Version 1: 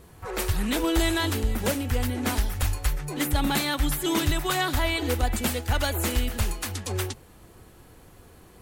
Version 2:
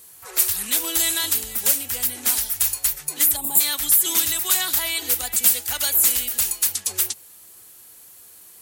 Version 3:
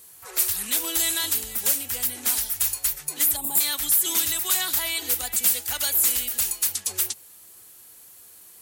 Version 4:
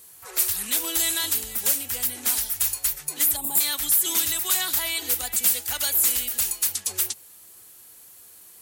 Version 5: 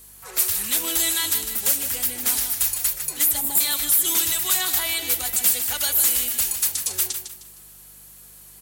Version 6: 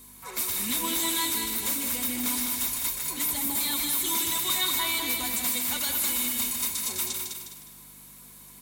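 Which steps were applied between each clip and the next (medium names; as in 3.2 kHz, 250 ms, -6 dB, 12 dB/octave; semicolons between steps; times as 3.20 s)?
treble shelf 4.3 kHz +11.5 dB; time-frequency box 3.36–3.60 s, 1.1–6.9 kHz -17 dB; tilt EQ +3.5 dB/octave; trim -6 dB
saturation -9 dBFS, distortion -18 dB; trim -2 dB
no audible change
hum 50 Hz, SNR 33 dB; on a send: feedback delay 154 ms, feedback 32%, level -8.5 dB; on the sum: trim +1.5 dB
saturation -21.5 dBFS, distortion -10 dB; small resonant body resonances 240/1000/2200/3700 Hz, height 13 dB, ringing for 35 ms; bit-crushed delay 206 ms, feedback 35%, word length 8-bit, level -5 dB; trim -3.5 dB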